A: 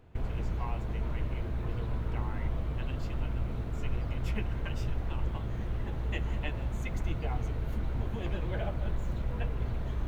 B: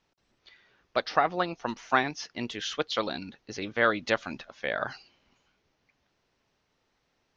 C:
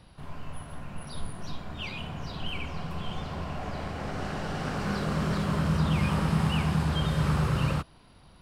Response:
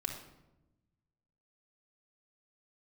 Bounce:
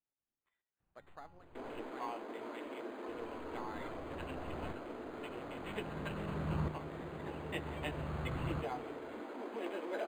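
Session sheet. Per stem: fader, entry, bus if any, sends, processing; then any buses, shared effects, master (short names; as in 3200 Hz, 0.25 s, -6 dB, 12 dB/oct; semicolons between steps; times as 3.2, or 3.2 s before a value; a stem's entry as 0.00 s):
+0.5 dB, 1.40 s, no send, steep high-pass 260 Hz 48 dB/oct
-18.0 dB, 0.00 s, no send, resonator 280 Hz, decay 0.44 s, harmonics odd, mix 70%; chopper 1.3 Hz, depth 60%, duty 80%
-11.5 dB, 0.80 s, muted 1.8–3.08, send -10 dB, dB-ramp tremolo swelling 0.51 Hz, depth 20 dB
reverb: on, RT60 0.95 s, pre-delay 3 ms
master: decimation joined by straight lines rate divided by 8×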